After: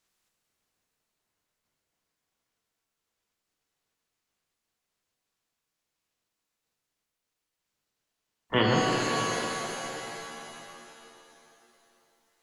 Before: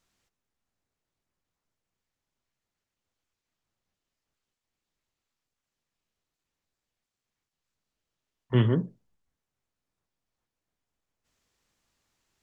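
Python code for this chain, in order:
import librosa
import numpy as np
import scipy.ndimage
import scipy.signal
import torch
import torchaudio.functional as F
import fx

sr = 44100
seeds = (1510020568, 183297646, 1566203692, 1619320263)

y = fx.spec_clip(x, sr, under_db=21)
y = fx.rev_shimmer(y, sr, seeds[0], rt60_s=3.0, semitones=7, shimmer_db=-2, drr_db=0.5)
y = y * 10.0 ** (-3.0 / 20.0)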